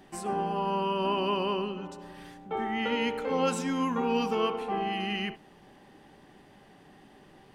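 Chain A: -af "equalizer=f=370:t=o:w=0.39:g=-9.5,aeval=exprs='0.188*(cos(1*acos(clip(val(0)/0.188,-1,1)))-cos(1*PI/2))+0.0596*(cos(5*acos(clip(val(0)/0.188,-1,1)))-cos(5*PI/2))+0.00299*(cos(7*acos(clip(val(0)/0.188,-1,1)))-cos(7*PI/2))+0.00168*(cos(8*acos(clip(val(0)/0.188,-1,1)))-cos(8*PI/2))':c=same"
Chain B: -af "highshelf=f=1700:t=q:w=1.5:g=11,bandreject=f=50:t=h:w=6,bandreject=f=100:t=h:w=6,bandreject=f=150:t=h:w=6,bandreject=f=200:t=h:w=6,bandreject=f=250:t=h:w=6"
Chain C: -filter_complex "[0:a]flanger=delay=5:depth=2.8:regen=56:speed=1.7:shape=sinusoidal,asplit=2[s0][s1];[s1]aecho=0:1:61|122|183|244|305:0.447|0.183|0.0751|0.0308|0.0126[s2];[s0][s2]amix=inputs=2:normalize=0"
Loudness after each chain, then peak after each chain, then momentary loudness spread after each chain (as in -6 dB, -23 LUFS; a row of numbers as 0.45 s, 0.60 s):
-24.5 LUFS, -24.5 LUFS, -32.5 LUFS; -13.0 dBFS, -11.0 dBFS, -18.0 dBFS; 10 LU, 15 LU, 10 LU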